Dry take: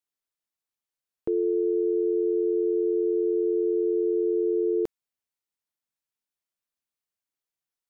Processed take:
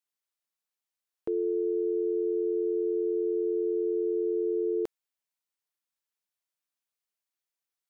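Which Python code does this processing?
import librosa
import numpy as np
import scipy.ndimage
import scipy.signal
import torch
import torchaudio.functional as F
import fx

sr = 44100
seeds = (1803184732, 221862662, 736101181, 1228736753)

y = fx.low_shelf(x, sr, hz=330.0, db=-9.5)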